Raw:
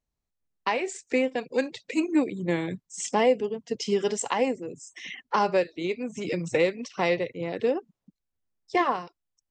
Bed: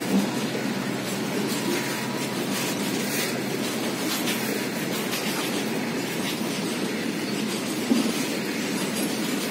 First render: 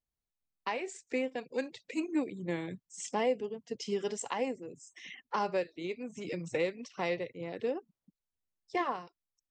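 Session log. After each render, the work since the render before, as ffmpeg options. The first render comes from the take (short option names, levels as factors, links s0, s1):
-af "volume=0.376"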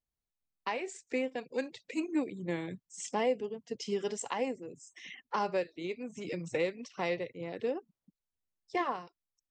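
-af anull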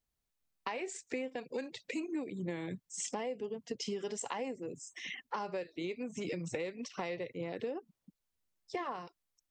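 -filter_complex "[0:a]asplit=2[s0][s1];[s1]alimiter=level_in=2:limit=0.0631:level=0:latency=1:release=27,volume=0.501,volume=0.75[s2];[s0][s2]amix=inputs=2:normalize=0,acompressor=threshold=0.0178:ratio=6"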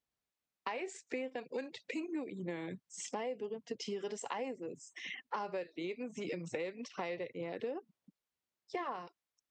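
-af "highpass=f=220:p=1,highshelf=f=6800:g=-11"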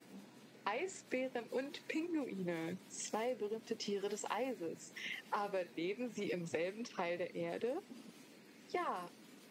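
-filter_complex "[1:a]volume=0.0237[s0];[0:a][s0]amix=inputs=2:normalize=0"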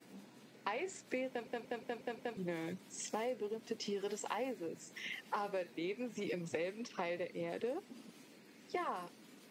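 -filter_complex "[0:a]asplit=7[s0][s1][s2][s3][s4][s5][s6];[s0]atrim=end=1.472[s7];[s1]atrim=start=1.288:end=1.472[s8];[s2]atrim=start=1.288:end=1.472[s9];[s3]atrim=start=1.288:end=1.472[s10];[s4]atrim=start=1.288:end=1.472[s11];[s5]atrim=start=1.288:end=1.472[s12];[s6]atrim=start=2.368[s13];[s7][s8]acrossfade=d=0.004:c1=hsin:c2=hsin[s14];[s14][s9]acrossfade=d=0.004:c1=hsin:c2=hsin[s15];[s15][s10]acrossfade=d=0.004:c1=hsin:c2=hsin[s16];[s16][s11]acrossfade=d=0.004:c1=hsin:c2=hsin[s17];[s17][s12]acrossfade=d=0.004:c1=hsin:c2=hsin[s18];[s18][s13]acrossfade=d=0.004:c1=hsin:c2=hsin"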